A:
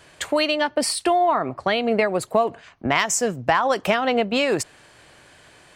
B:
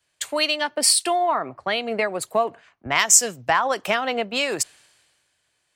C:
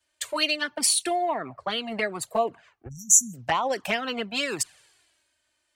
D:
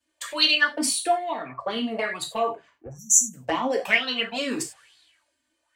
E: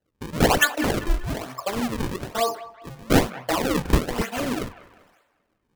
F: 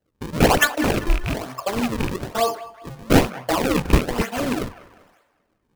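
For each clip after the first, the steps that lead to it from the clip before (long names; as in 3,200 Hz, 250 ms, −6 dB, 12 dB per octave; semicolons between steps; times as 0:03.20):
spectral tilt +2 dB per octave; multiband upward and downward expander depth 70%; level −2 dB
flanger swept by the level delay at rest 3.3 ms, full sweep at −16 dBFS; time-frequency box erased 0:02.88–0:03.34, 270–5,600 Hz
reverb whose tail is shaped and stops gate 120 ms falling, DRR 1 dB; auto-filter bell 1.1 Hz 250–4,000 Hz +16 dB; level −5.5 dB
sample-and-hold swept by an LFO 37×, swing 160% 1.1 Hz; delay with a band-pass on its return 196 ms, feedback 39%, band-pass 1,300 Hz, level −13.5 dB; level +1.5 dB
loose part that buzzes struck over −25 dBFS, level −16 dBFS; in parallel at −11 dB: sample-rate reduction 3,800 Hz, jitter 0%; on the sum: level +1 dB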